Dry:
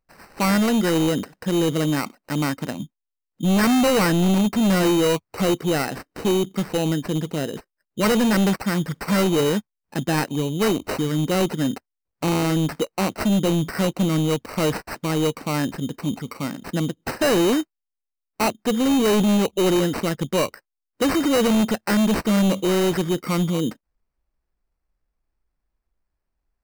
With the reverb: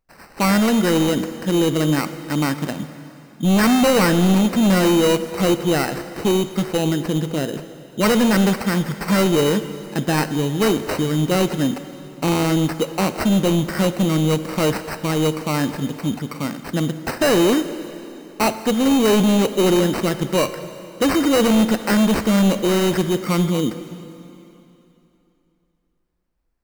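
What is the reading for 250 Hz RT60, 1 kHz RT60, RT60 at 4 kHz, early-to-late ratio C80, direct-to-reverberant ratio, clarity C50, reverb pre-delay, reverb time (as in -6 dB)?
2.9 s, 3.0 s, 2.8 s, 12.0 dB, 10.5 dB, 11.5 dB, 7 ms, 3.0 s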